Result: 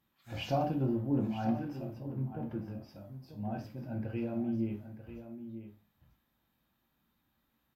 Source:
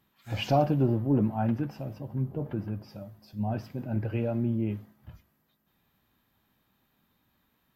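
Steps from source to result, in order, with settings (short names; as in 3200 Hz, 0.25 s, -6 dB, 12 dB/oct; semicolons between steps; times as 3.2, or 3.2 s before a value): bell 410 Hz -2 dB 0.45 oct; echo 0.94 s -11.5 dB; on a send at -3 dB: reverb, pre-delay 3 ms; on the sum: gain -8 dB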